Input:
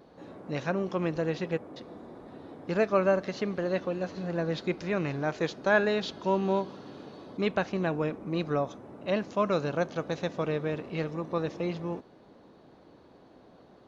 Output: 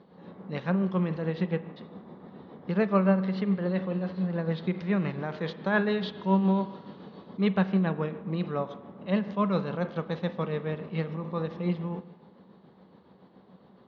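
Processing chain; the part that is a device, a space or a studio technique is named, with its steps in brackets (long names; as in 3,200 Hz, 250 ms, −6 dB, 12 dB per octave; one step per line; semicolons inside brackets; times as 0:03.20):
0:02.90–0:04.48: notch filter 6,300 Hz, Q 7.2
combo amplifier with spring reverb and tremolo (spring reverb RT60 1.1 s, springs 37/45 ms, chirp 60 ms, DRR 11 dB; amplitude tremolo 7.1 Hz, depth 42%; loudspeaker in its box 98–3,700 Hz, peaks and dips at 120 Hz −5 dB, 190 Hz +10 dB, 300 Hz −7 dB, 660 Hz −6 dB, 1,500 Hz −5 dB, 2,500 Hz −7 dB)
parametric band 400 Hz −2.5 dB 2.3 octaves
level +3.5 dB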